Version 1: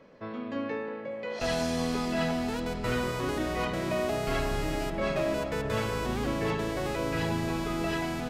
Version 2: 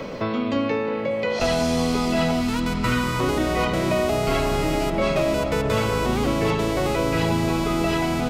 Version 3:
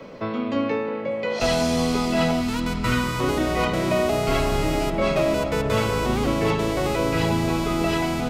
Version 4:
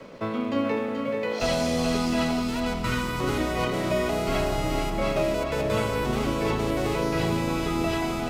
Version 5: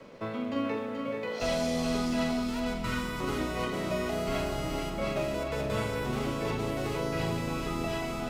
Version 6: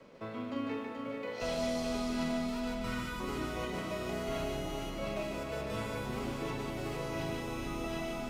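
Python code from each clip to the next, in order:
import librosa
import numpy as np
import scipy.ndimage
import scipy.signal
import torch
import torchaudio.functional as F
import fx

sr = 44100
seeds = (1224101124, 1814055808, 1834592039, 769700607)

y1 = fx.notch(x, sr, hz=1700.0, q=8.0)
y1 = fx.spec_box(y1, sr, start_s=2.41, length_s=0.79, low_hz=330.0, high_hz=890.0, gain_db=-9)
y1 = fx.band_squash(y1, sr, depth_pct=70)
y1 = y1 * 10.0 ** (8.0 / 20.0)
y2 = fx.band_widen(y1, sr, depth_pct=70)
y3 = fx.rider(y2, sr, range_db=3, speed_s=2.0)
y3 = np.sign(y3) * np.maximum(np.abs(y3) - 10.0 ** (-47.5 / 20.0), 0.0)
y3 = y3 + 10.0 ** (-6.0 / 20.0) * np.pad(y3, (int(430 * sr / 1000.0), 0))[:len(y3)]
y3 = y3 * 10.0 ** (-4.0 / 20.0)
y4 = fx.doubler(y3, sr, ms=44.0, db=-8)
y4 = y4 * 10.0 ** (-6.0 / 20.0)
y5 = y4 + 10.0 ** (-4.0 / 20.0) * np.pad(y4, (int(149 * sr / 1000.0), 0))[:len(y4)]
y5 = y5 * 10.0 ** (-6.5 / 20.0)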